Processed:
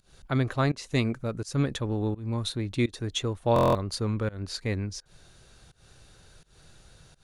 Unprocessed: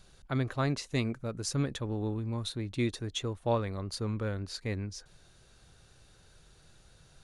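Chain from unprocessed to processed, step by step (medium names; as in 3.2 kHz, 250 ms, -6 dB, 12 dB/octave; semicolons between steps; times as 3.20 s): volume shaper 84 bpm, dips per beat 1, -24 dB, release 213 ms; buffer glitch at 3.54 s, samples 1024, times 8; trim +5 dB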